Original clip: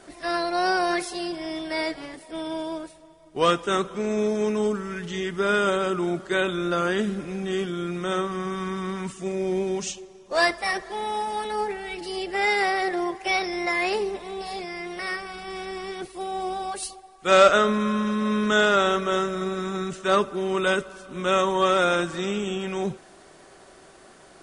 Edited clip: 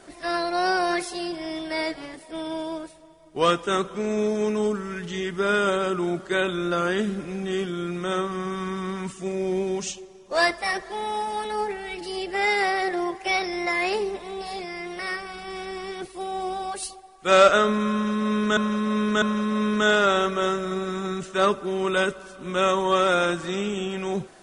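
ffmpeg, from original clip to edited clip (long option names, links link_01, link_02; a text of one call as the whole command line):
ffmpeg -i in.wav -filter_complex "[0:a]asplit=3[link_01][link_02][link_03];[link_01]atrim=end=18.572[link_04];[link_02]atrim=start=17.918:end=18.572[link_05];[link_03]atrim=start=17.918[link_06];[link_04][link_05]acrossfade=duration=0.004:curve1=hsin:curve2=hsin[link_07];[link_07][link_06]acrossfade=duration=0.004:curve1=hsin:curve2=hsin" out.wav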